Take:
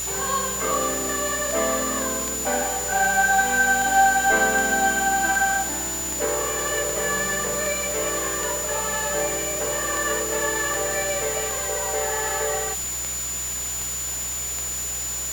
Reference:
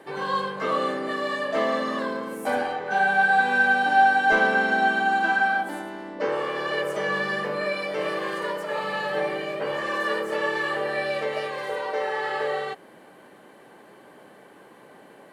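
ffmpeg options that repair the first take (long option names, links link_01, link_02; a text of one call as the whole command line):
ffmpeg -i in.wav -af "adeclick=threshold=4,bandreject=frequency=61.6:width_type=h:width=4,bandreject=frequency=123.2:width_type=h:width=4,bandreject=frequency=184.8:width_type=h:width=4,bandreject=frequency=7000:width=30,afwtdn=0.02" out.wav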